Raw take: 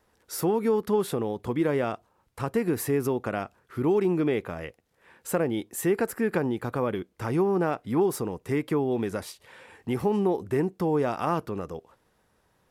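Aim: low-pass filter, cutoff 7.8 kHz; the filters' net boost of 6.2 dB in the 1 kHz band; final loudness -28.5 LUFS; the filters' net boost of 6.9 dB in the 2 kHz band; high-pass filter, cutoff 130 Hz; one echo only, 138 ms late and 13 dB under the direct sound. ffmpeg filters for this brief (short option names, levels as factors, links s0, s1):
-af "highpass=130,lowpass=7800,equalizer=f=1000:t=o:g=6.5,equalizer=f=2000:t=o:g=6.5,aecho=1:1:138:0.224,volume=0.75"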